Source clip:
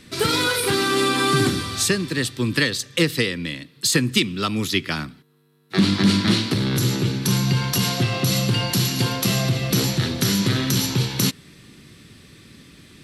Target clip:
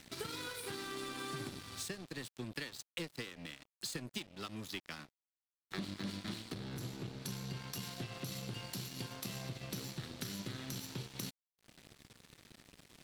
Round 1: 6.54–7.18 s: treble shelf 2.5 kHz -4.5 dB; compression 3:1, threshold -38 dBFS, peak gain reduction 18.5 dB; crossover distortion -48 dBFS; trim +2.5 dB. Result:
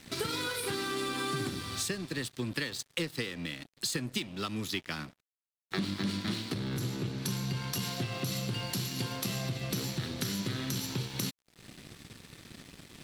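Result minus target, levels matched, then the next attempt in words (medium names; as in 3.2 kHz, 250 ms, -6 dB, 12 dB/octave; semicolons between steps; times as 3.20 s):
compression: peak gain reduction -7 dB
6.54–7.18 s: treble shelf 2.5 kHz -4.5 dB; compression 3:1, threshold -48.5 dBFS, peak gain reduction 25.5 dB; crossover distortion -48 dBFS; trim +2.5 dB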